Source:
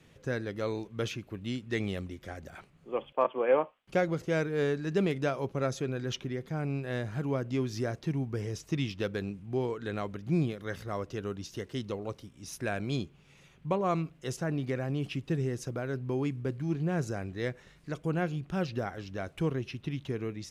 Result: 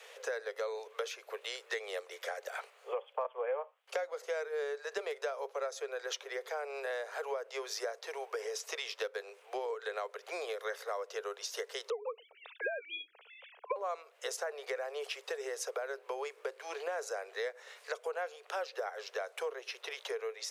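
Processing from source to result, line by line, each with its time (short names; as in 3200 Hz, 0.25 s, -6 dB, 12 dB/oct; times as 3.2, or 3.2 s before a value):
11.9–13.76 sine-wave speech
whole clip: steep high-pass 430 Hz 96 dB/oct; dynamic EQ 2800 Hz, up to -6 dB, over -57 dBFS, Q 2.2; compressor 5:1, threshold -47 dBFS; gain +11 dB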